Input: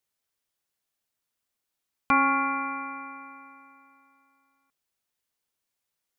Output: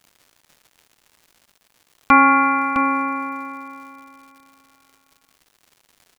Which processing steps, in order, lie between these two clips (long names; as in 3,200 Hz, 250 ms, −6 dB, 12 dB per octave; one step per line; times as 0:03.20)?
comb filter 3.5 ms, depth 40%
single-tap delay 659 ms −6 dB
surface crackle 240 per second −48 dBFS
level +7.5 dB